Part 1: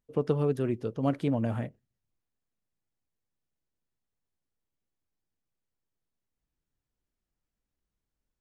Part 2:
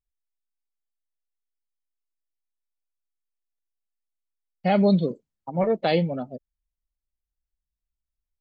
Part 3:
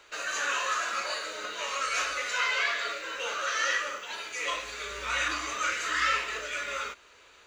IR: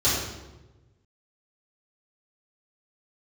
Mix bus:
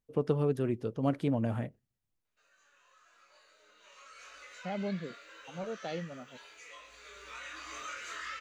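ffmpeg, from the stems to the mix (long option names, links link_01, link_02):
-filter_complex "[0:a]volume=-2dB,asplit=2[link_01][link_02];[1:a]volume=-16.5dB[link_03];[2:a]acompressor=threshold=-33dB:ratio=5,flanger=delay=20:depth=3:speed=0.88,adelay=2250,volume=-3.5dB,afade=type=in:start_time=3.72:duration=0.66:silence=0.298538,afade=type=in:start_time=7.02:duration=0.8:silence=0.375837[link_04];[link_02]apad=whole_len=428638[link_05];[link_04][link_05]sidechaincompress=threshold=-46dB:ratio=4:attack=16:release=1370[link_06];[link_01][link_03][link_06]amix=inputs=3:normalize=0"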